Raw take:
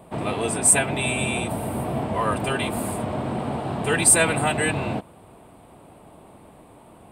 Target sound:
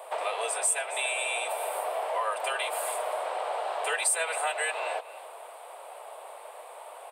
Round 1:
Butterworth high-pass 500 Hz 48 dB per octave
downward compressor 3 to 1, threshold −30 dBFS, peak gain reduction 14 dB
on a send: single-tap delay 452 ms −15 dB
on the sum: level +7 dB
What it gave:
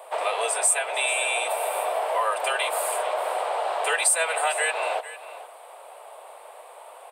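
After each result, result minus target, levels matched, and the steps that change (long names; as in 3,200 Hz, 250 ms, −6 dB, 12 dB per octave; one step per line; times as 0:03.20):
echo 179 ms late; downward compressor: peak gain reduction −5.5 dB
change: single-tap delay 273 ms −15 dB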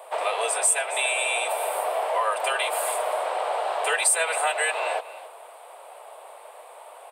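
downward compressor: peak gain reduction −5.5 dB
change: downward compressor 3 to 1, threshold −38 dBFS, peak gain reduction 19.5 dB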